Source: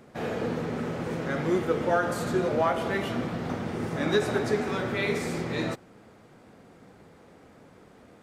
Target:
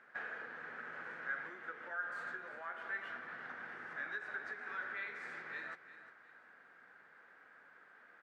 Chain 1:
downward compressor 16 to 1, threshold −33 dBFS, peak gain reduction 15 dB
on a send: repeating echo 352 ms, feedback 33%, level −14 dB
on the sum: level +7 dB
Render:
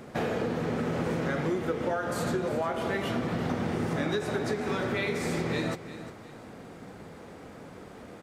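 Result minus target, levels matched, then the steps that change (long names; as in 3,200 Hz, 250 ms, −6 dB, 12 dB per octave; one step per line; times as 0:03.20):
2,000 Hz band −9.5 dB
add after downward compressor: resonant band-pass 1,600 Hz, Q 5.9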